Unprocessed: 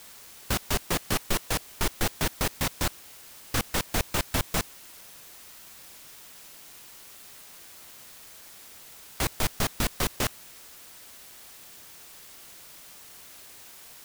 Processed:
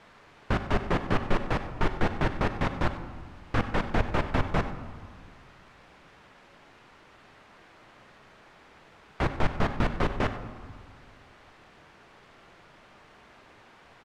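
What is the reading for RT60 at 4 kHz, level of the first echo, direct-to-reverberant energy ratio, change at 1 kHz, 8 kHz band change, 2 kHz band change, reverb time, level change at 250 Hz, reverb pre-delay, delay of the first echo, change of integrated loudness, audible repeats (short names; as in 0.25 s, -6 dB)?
0.80 s, -15.0 dB, 8.0 dB, +3.5 dB, -22.0 dB, 0.0 dB, 1.6 s, +4.0 dB, 5 ms, 95 ms, -1.0 dB, 1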